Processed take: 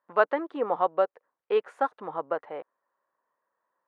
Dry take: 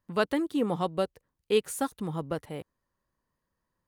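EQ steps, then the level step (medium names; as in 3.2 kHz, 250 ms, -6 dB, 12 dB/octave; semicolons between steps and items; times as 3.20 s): Butterworth band-pass 930 Hz, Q 0.81; +7.0 dB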